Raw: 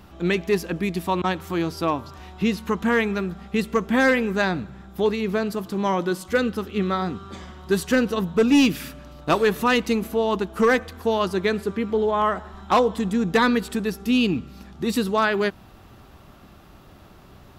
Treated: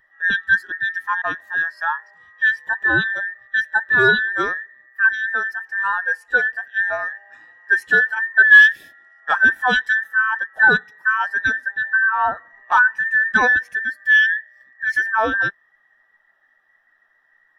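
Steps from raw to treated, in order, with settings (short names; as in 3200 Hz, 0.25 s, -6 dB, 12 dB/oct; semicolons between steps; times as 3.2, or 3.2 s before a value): band inversion scrambler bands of 2000 Hz; spectral expander 1.5:1; gain +6 dB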